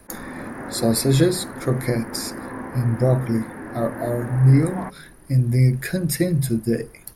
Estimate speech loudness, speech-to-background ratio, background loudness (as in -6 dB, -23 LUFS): -21.5 LUFS, 12.5 dB, -34.0 LUFS